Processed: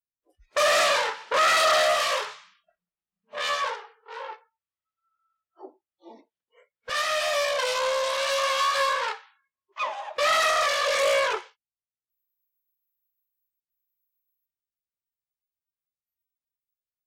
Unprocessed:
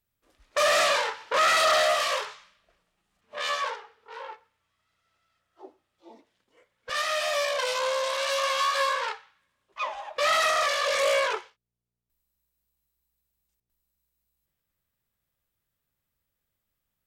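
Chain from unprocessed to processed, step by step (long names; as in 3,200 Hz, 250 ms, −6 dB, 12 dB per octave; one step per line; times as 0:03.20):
noise reduction from a noise print of the clip's start 27 dB
in parallel at −8 dB: soft clipping −28.5 dBFS, distortion −8 dB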